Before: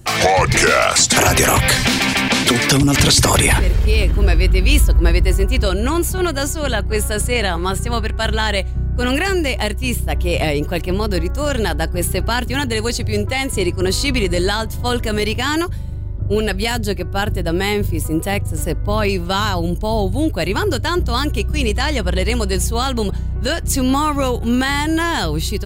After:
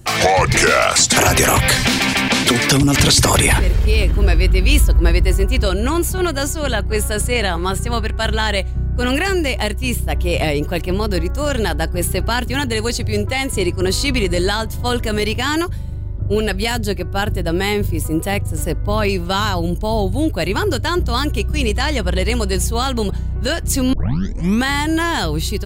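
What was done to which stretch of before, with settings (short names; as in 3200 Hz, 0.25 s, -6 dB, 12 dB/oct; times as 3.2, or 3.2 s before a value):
23.93 tape start 0.70 s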